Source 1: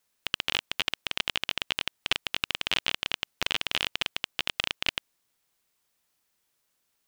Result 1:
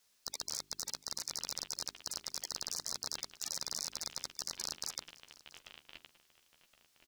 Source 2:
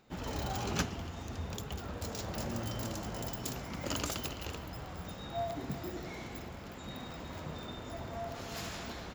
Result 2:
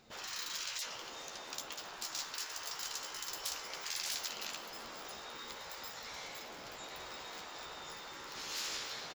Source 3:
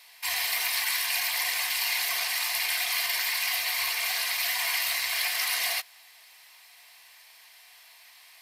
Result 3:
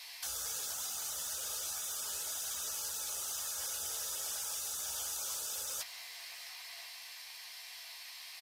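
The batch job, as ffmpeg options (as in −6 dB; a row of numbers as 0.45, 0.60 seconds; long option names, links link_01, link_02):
-filter_complex "[0:a]asplit=2[link_01][link_02];[link_02]adelay=13,volume=-7dB[link_03];[link_01][link_03]amix=inputs=2:normalize=0,asplit=2[link_04][link_05];[link_05]adelay=1069,lowpass=frequency=1800:poles=1,volume=-23.5dB,asplit=2[link_06][link_07];[link_07]adelay=1069,lowpass=frequency=1800:poles=1,volume=0.31[link_08];[link_06][link_08]amix=inputs=2:normalize=0[link_09];[link_04][link_09]amix=inputs=2:normalize=0,afftfilt=real='re*lt(hypot(re,im),0.02)':imag='im*lt(hypot(re,im),0.02)':win_size=1024:overlap=0.75,equalizer=frequency=5100:width_type=o:width=1.3:gain=7,bandreject=frequency=50:width_type=h:width=6,bandreject=frequency=100:width_type=h:width=6,bandreject=frequency=150:width_type=h:width=6,bandreject=frequency=200:width_type=h:width=6,bandreject=frequency=250:width_type=h:width=6,bandreject=frequency=300:width_type=h:width=6,bandreject=frequency=350:width_type=h:width=6,bandreject=frequency=400:width_type=h:width=6,asplit=2[link_10][link_11];[link_11]aecho=0:1:686:0.0891[link_12];[link_10][link_12]amix=inputs=2:normalize=0"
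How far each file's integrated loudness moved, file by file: −10.0, −1.5, −12.0 LU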